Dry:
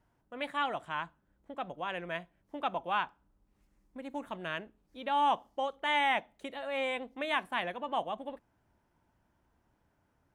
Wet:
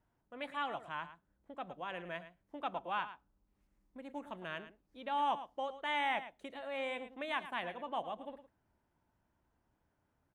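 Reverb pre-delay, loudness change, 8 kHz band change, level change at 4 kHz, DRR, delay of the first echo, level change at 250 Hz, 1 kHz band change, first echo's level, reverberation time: none, -5.5 dB, n/a, -6.5 dB, none, 0.109 s, -5.5 dB, -5.5 dB, -13.0 dB, none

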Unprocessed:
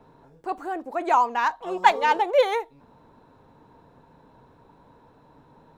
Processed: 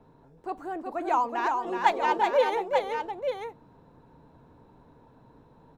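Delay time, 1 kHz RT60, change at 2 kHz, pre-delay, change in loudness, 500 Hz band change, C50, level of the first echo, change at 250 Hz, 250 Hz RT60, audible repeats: 0.373 s, none, -4.5 dB, none, -4.5 dB, -2.0 dB, none, -4.5 dB, -0.5 dB, none, 2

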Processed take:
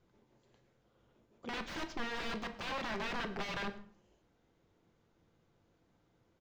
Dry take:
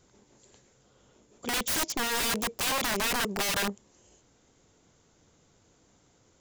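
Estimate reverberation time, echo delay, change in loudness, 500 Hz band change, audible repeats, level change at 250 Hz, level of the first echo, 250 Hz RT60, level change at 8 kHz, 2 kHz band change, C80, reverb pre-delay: 0.50 s, 0.116 s, -11.5 dB, -8.0 dB, 1, -7.5 dB, -21.5 dB, 0.60 s, -25.0 dB, -9.0 dB, 15.0 dB, 6 ms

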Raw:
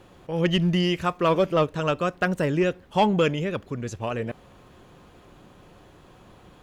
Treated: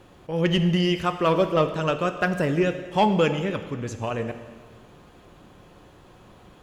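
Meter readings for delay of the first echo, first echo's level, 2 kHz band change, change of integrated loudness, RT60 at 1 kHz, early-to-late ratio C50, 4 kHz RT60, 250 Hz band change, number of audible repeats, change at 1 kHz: none, none, +0.5 dB, +0.5 dB, 1.6 s, 10.0 dB, 1.5 s, +0.5 dB, none, +1.0 dB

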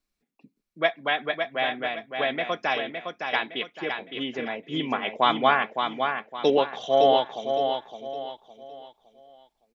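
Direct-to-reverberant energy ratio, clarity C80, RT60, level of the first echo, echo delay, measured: none, none, none, -6.0 dB, 0.562 s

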